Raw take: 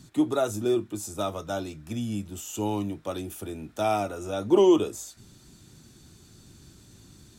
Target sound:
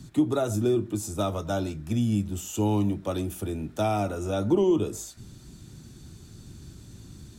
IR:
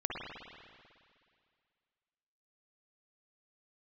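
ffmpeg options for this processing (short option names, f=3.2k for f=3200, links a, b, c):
-filter_complex "[0:a]lowshelf=f=250:g=8.5,acrossover=split=230[a][b];[b]acompressor=threshold=-23dB:ratio=10[c];[a][c]amix=inputs=2:normalize=0,asplit=2[d][e];[1:a]atrim=start_sample=2205,atrim=end_sample=3969,asetrate=23814,aresample=44100[f];[e][f]afir=irnorm=-1:irlink=0,volume=-21.5dB[g];[d][g]amix=inputs=2:normalize=0"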